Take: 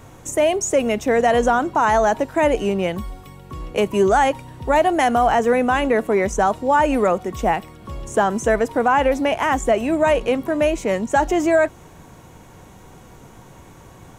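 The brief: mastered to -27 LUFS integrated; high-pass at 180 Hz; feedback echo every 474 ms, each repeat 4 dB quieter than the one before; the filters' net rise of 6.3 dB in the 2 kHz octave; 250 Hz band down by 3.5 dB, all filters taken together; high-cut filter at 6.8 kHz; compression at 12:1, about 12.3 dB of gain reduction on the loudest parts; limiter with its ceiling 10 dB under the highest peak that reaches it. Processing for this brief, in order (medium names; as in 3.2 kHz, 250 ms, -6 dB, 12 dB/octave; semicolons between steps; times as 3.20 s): high-pass 180 Hz; low-pass 6.8 kHz; peaking EQ 250 Hz -3.5 dB; peaking EQ 2 kHz +8 dB; compression 12:1, threshold -23 dBFS; peak limiter -20 dBFS; feedback delay 474 ms, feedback 63%, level -4 dB; trim +1.5 dB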